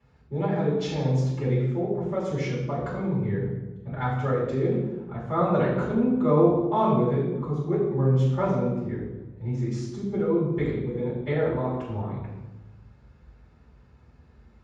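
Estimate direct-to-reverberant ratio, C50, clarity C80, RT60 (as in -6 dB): -11.5 dB, 2.0 dB, 4.0 dB, 1.1 s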